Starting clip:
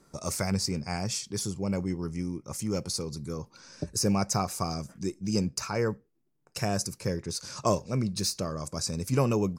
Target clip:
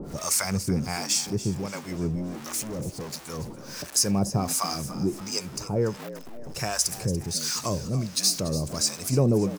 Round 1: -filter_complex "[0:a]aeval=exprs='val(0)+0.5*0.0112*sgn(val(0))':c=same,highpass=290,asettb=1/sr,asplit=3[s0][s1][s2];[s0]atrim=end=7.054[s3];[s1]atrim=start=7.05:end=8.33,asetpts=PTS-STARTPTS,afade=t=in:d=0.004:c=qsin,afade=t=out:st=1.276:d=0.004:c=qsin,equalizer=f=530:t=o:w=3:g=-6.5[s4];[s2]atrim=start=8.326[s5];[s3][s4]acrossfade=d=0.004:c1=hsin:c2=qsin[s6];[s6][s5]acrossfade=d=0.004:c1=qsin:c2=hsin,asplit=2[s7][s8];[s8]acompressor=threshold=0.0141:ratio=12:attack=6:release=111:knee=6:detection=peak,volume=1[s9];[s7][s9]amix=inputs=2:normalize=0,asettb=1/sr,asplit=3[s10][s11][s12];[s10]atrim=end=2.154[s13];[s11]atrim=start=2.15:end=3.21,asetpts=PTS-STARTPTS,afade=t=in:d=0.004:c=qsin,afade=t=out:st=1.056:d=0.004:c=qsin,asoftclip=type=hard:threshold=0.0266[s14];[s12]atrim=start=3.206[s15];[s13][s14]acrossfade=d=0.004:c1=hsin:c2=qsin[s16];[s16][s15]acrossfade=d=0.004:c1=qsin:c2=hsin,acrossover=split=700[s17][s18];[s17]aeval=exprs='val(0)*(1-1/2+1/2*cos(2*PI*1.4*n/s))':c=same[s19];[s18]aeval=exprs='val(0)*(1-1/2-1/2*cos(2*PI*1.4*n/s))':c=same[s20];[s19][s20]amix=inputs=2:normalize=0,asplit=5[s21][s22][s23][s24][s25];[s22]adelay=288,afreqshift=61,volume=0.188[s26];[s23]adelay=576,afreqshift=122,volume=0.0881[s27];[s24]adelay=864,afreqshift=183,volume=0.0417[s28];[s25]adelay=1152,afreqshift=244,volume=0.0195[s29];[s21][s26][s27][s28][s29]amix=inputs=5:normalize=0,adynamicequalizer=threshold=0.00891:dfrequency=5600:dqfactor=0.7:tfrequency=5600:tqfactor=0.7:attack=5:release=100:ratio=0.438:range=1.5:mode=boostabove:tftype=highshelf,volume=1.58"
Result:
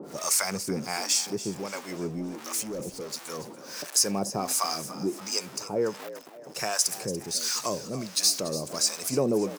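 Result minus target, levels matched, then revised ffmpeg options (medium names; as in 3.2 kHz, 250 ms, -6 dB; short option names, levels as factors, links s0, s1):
250 Hz band -3.5 dB
-filter_complex "[0:a]aeval=exprs='val(0)+0.5*0.0112*sgn(val(0))':c=same,asettb=1/sr,asplit=3[s0][s1][s2];[s0]atrim=end=7.054[s3];[s1]atrim=start=7.05:end=8.33,asetpts=PTS-STARTPTS,afade=t=in:d=0.004:c=qsin,afade=t=out:st=1.276:d=0.004:c=qsin,equalizer=f=530:t=o:w=3:g=-6.5[s4];[s2]atrim=start=8.326[s5];[s3][s4]acrossfade=d=0.004:c1=hsin:c2=qsin[s6];[s6][s5]acrossfade=d=0.004:c1=qsin:c2=hsin,asplit=2[s7][s8];[s8]acompressor=threshold=0.0141:ratio=12:attack=6:release=111:knee=6:detection=peak,volume=1[s9];[s7][s9]amix=inputs=2:normalize=0,asettb=1/sr,asplit=3[s10][s11][s12];[s10]atrim=end=2.154[s13];[s11]atrim=start=2.15:end=3.21,asetpts=PTS-STARTPTS,afade=t=in:d=0.004:c=qsin,afade=t=out:st=1.056:d=0.004:c=qsin,asoftclip=type=hard:threshold=0.0266[s14];[s12]atrim=start=3.206[s15];[s13][s14]acrossfade=d=0.004:c1=hsin:c2=qsin[s16];[s16][s15]acrossfade=d=0.004:c1=qsin:c2=hsin,acrossover=split=700[s17][s18];[s17]aeval=exprs='val(0)*(1-1/2+1/2*cos(2*PI*1.4*n/s))':c=same[s19];[s18]aeval=exprs='val(0)*(1-1/2-1/2*cos(2*PI*1.4*n/s))':c=same[s20];[s19][s20]amix=inputs=2:normalize=0,asplit=5[s21][s22][s23][s24][s25];[s22]adelay=288,afreqshift=61,volume=0.188[s26];[s23]adelay=576,afreqshift=122,volume=0.0881[s27];[s24]adelay=864,afreqshift=183,volume=0.0417[s28];[s25]adelay=1152,afreqshift=244,volume=0.0195[s29];[s21][s26][s27][s28][s29]amix=inputs=5:normalize=0,adynamicequalizer=threshold=0.00891:dfrequency=5600:dqfactor=0.7:tfrequency=5600:tqfactor=0.7:attack=5:release=100:ratio=0.438:range=1.5:mode=boostabove:tftype=highshelf,volume=1.58"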